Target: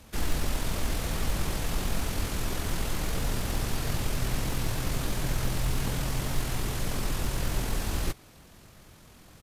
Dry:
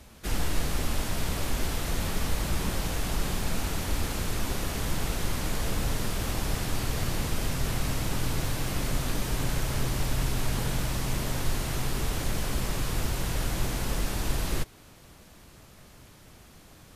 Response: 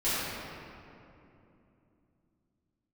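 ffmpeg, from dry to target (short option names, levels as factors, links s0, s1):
-af "acrusher=bits=8:mode=log:mix=0:aa=0.000001,atempo=1.8"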